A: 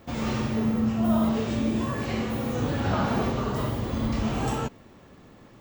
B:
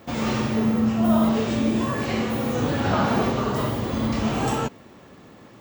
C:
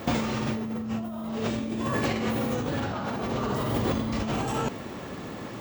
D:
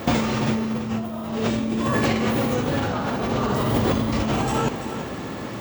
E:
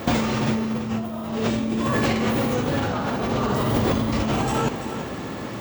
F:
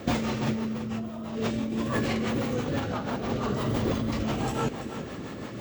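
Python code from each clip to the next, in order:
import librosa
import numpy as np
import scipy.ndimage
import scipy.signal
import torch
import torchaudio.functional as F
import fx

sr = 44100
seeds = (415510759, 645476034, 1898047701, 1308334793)

y1 = fx.highpass(x, sr, hz=130.0, slope=6)
y1 = y1 * 10.0 ** (5.0 / 20.0)
y2 = fx.over_compress(y1, sr, threshold_db=-31.0, ratio=-1.0)
y2 = y2 * 10.0 ** (2.0 / 20.0)
y3 = fx.echo_feedback(y2, sr, ms=335, feedback_pct=30, wet_db=-11)
y3 = y3 * 10.0 ** (5.5 / 20.0)
y4 = np.minimum(y3, 2.0 * 10.0 ** (-15.0 / 20.0) - y3)
y5 = fx.rotary(y4, sr, hz=6.0)
y5 = y5 * 10.0 ** (-4.0 / 20.0)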